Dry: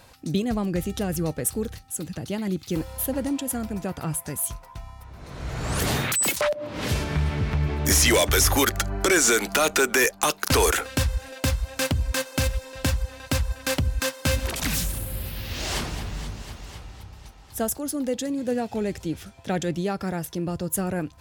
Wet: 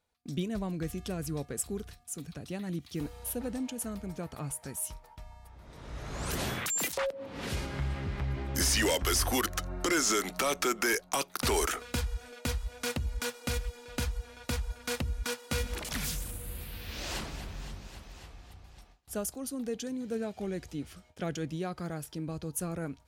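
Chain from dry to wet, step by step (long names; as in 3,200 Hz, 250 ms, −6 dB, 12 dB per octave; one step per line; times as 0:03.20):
parametric band 120 Hz −8 dB 0.26 octaves
wrong playback speed 48 kHz file played as 44.1 kHz
noise gate with hold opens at −37 dBFS
level −8.5 dB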